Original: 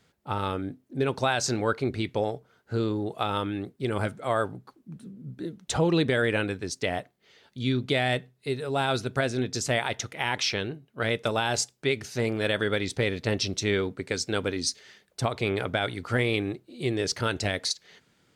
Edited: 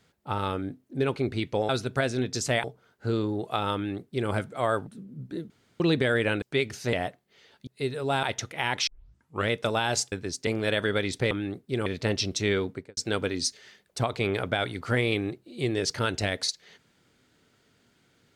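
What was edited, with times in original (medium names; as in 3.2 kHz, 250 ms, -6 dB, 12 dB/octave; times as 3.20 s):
1.16–1.78 s: delete
3.42–3.97 s: copy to 13.08 s
4.54–4.95 s: delete
5.58–5.88 s: room tone
6.50–6.85 s: swap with 11.73–12.24 s
7.59–8.33 s: delete
8.89–9.84 s: move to 2.31 s
10.48 s: tape start 0.62 s
13.91–14.19 s: studio fade out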